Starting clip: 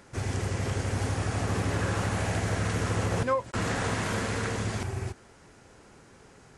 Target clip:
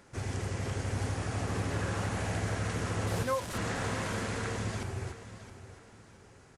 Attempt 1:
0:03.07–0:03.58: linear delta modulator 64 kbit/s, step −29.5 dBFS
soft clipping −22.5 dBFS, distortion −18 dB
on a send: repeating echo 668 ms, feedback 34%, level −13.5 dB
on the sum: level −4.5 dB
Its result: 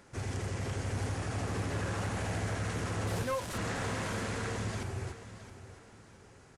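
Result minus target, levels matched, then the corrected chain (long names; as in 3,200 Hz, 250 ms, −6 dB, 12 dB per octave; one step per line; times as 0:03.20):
soft clipping: distortion +20 dB
0:03.07–0:03.58: linear delta modulator 64 kbit/s, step −29.5 dBFS
soft clipping −10.5 dBFS, distortion −38 dB
on a send: repeating echo 668 ms, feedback 34%, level −13.5 dB
on the sum: level −4.5 dB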